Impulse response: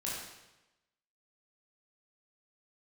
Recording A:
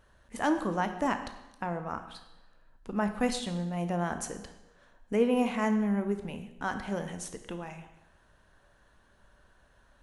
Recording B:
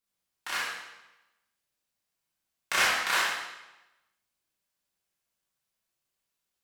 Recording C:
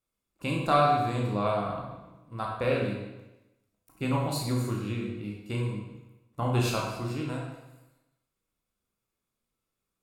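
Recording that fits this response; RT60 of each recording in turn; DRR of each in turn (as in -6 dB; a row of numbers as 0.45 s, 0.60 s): B; 1.0 s, 1.0 s, 1.0 s; 7.5 dB, -6.5 dB, -2.0 dB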